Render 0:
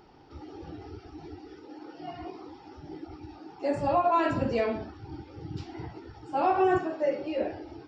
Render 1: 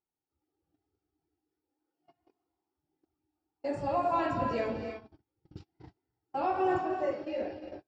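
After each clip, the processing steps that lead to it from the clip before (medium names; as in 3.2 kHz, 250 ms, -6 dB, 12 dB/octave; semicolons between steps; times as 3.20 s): gated-style reverb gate 370 ms rising, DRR 6 dB; gate -34 dBFS, range -36 dB; trim -5.5 dB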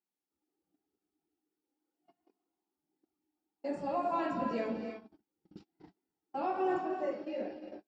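resonant low shelf 150 Hz -9.5 dB, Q 3; trim -4.5 dB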